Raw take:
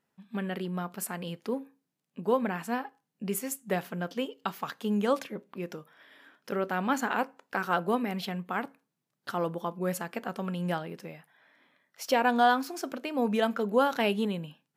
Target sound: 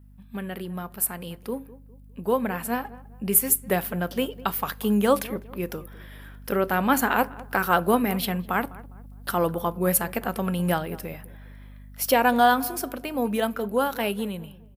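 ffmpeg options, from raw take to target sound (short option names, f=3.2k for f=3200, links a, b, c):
-filter_complex "[0:a]aexciter=amount=4.6:drive=5.5:freq=9k,aeval=exprs='val(0)+0.00355*(sin(2*PI*50*n/s)+sin(2*PI*2*50*n/s)/2+sin(2*PI*3*50*n/s)/3+sin(2*PI*4*50*n/s)/4+sin(2*PI*5*50*n/s)/5)':c=same,dynaudnorm=f=250:g=21:m=7dB,asplit=2[a][b];[b]adelay=203,lowpass=f=1.3k:p=1,volume=-18dB,asplit=2[c][d];[d]adelay=203,lowpass=f=1.3k:p=1,volume=0.39,asplit=2[e][f];[f]adelay=203,lowpass=f=1.3k:p=1,volume=0.39[g];[c][e][g]amix=inputs=3:normalize=0[h];[a][h]amix=inputs=2:normalize=0"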